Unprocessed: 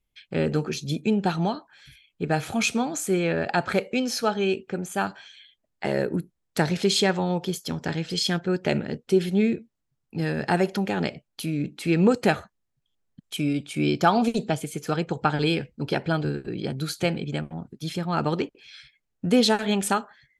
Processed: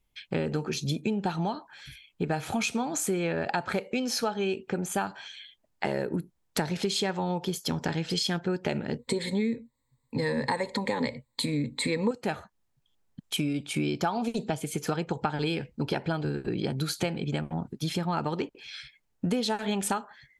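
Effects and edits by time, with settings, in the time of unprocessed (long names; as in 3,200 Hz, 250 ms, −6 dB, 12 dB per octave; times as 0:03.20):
0:08.99–0:12.11: EQ curve with evenly spaced ripples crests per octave 1, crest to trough 17 dB
whole clip: parametric band 910 Hz +5 dB 0.38 octaves; downward compressor 6 to 1, threshold −30 dBFS; level +4 dB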